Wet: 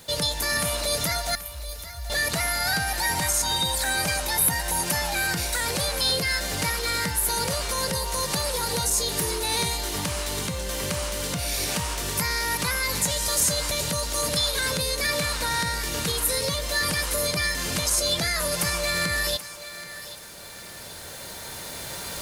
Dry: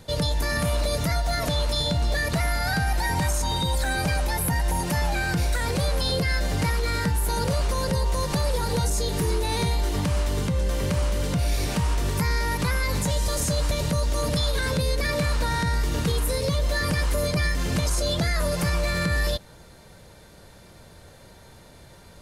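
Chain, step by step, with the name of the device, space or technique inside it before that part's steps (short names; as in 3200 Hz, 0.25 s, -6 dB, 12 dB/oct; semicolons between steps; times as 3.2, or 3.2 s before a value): tilt +2.5 dB/oct; cheap recorder with automatic gain (white noise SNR 31 dB; recorder AGC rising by 5.2 dB/s); 1.35–2.1 inverse Chebyshev band-stop 250–5200 Hz, stop band 60 dB; thinning echo 0.781 s, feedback 35%, high-pass 420 Hz, level -13.5 dB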